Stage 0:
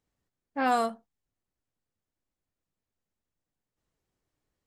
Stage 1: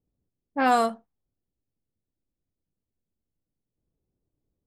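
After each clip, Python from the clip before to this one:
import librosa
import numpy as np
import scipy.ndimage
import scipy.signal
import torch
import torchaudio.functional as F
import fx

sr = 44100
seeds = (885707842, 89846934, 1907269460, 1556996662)

y = fx.env_lowpass(x, sr, base_hz=410.0, full_db=-24.0)
y = F.gain(torch.from_numpy(y), 4.5).numpy()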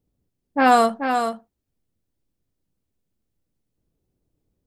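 y = x + 10.0 ** (-7.0 / 20.0) * np.pad(x, (int(433 * sr / 1000.0), 0))[:len(x)]
y = F.gain(torch.from_numpy(y), 6.0).numpy()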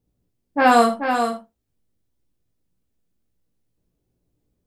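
y = fx.room_early_taps(x, sr, ms=(17, 51, 79), db=(-5.0, -10.0, -15.5))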